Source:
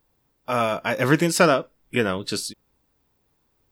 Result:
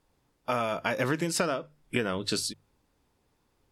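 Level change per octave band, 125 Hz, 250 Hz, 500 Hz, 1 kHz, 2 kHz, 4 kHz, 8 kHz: -9.0 dB, -8.5 dB, -8.5 dB, -8.0 dB, -8.0 dB, -4.0 dB, -4.5 dB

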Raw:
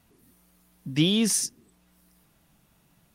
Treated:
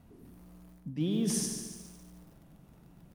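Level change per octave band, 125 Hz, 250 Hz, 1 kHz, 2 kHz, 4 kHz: -5.5 dB, -6.0 dB, -5.0 dB, -15.5 dB, -14.5 dB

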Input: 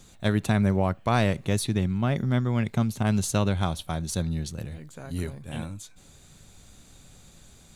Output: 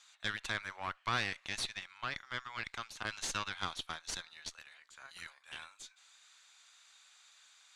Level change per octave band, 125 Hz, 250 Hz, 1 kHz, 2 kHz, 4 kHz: -27.0 dB, -27.0 dB, -9.0 dB, -3.0 dB, -2.5 dB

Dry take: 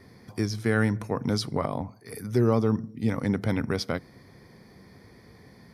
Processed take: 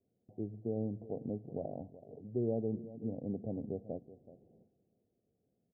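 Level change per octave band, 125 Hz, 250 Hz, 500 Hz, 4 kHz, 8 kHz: -15.0 dB, -12.0 dB, -10.0 dB, under -40 dB, under -35 dB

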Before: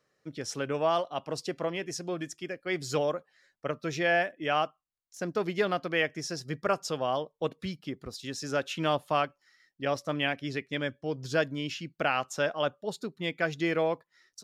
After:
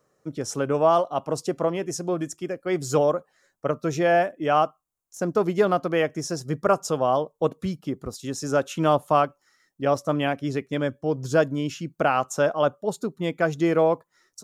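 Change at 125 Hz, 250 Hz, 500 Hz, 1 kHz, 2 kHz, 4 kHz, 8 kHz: +8.0 dB, +8.0 dB, +8.0 dB, +7.5 dB, +0.5 dB, -1.5 dB, +6.5 dB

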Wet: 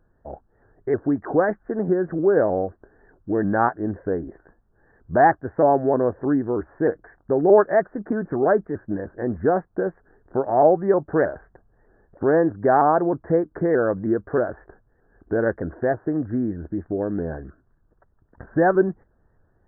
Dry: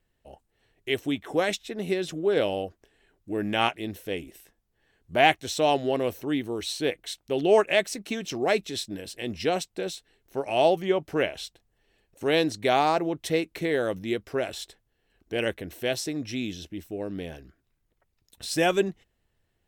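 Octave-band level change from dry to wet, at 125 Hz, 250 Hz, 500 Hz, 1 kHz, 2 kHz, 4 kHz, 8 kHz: +7.5 dB, +7.0 dB, +6.0 dB, +6.0 dB, 0.0 dB, under -40 dB, under -40 dB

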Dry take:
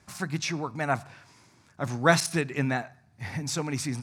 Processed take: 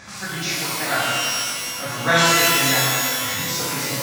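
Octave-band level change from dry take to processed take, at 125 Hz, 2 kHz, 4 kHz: +1.5 dB, +10.5 dB, +16.5 dB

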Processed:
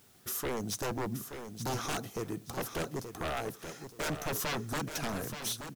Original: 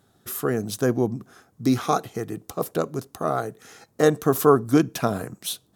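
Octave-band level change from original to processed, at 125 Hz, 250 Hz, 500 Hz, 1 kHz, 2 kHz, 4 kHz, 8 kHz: -11.0 dB, -15.0 dB, -15.5 dB, -11.5 dB, -4.5 dB, -3.5 dB, -3.5 dB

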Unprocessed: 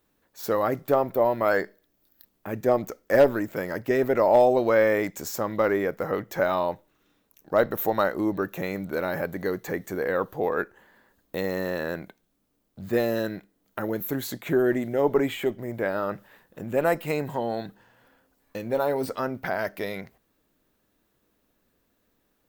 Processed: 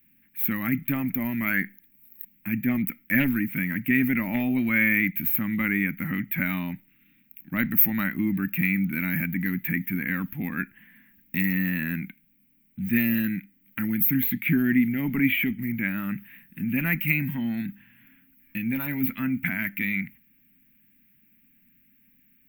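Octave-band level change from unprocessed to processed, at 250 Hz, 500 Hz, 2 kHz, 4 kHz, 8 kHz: +6.0 dB, -20.5 dB, +6.0 dB, -2.0 dB, under -10 dB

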